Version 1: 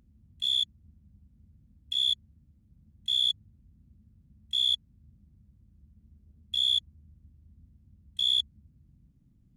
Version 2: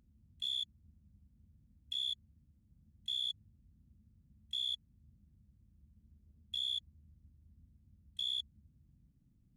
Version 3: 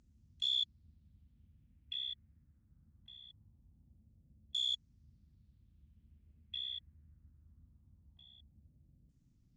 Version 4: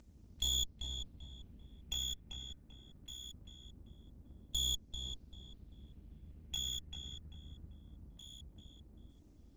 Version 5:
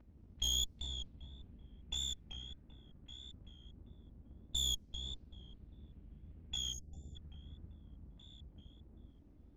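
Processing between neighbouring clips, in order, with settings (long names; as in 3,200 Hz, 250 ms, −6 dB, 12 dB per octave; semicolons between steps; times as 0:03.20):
brickwall limiter −23.5 dBFS, peak gain reduction 6 dB; level −6.5 dB
parametric band 200 Hz −4 dB 0.22 octaves; auto-filter low-pass saw down 0.22 Hz 520–7,200 Hz
lower of the sound and its delayed copy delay 3.3 ms; downward compressor 1.5 to 1, threshold −53 dBFS, peak gain reduction 7 dB; feedback echo with a low-pass in the loop 391 ms, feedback 36%, low-pass 2,300 Hz, level −4 dB; level +9 dB
pitch vibrato 1.6 Hz 69 cents; low-pass that shuts in the quiet parts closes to 2,000 Hz, open at −33.5 dBFS; gain on a spectral selection 0:06.73–0:07.16, 800–4,500 Hz −28 dB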